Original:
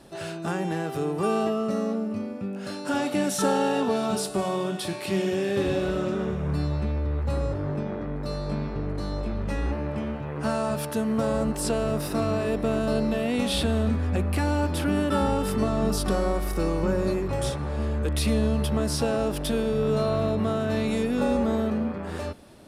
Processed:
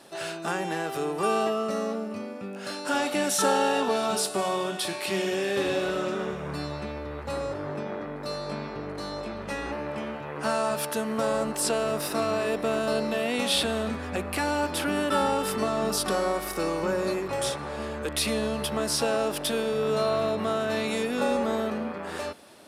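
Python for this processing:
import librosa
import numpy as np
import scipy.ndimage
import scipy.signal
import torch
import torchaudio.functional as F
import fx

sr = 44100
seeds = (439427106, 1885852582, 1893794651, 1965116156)

y = fx.highpass(x, sr, hz=650.0, slope=6)
y = y * 10.0 ** (4.0 / 20.0)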